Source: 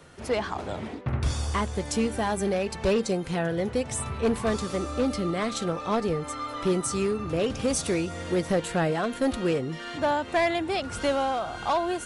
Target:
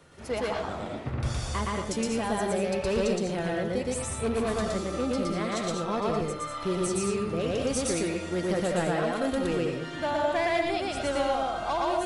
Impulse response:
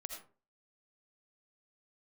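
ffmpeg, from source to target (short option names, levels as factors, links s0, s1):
-filter_complex "[0:a]asplit=2[s0][s1];[1:a]atrim=start_sample=2205,adelay=117[s2];[s1][s2]afir=irnorm=-1:irlink=0,volume=1.68[s3];[s0][s3]amix=inputs=2:normalize=0,volume=0.562"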